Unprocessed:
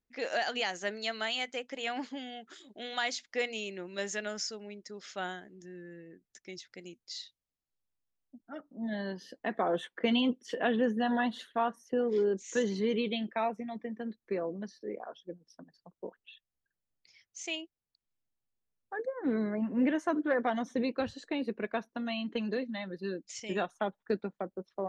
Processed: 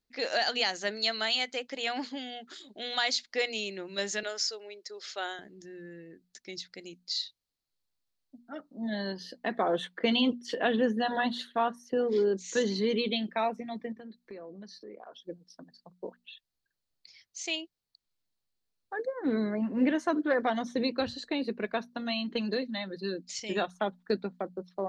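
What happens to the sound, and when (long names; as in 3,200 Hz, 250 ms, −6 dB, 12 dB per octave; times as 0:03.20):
0:04.23–0:05.39: Chebyshev high-pass filter 390 Hz, order 3
0:13.92–0:15.25: downward compressor 3 to 1, threshold −47 dBFS
whole clip: parametric band 4,300 Hz +10 dB 0.49 octaves; mains-hum notches 60/120/180/240 Hz; level +2 dB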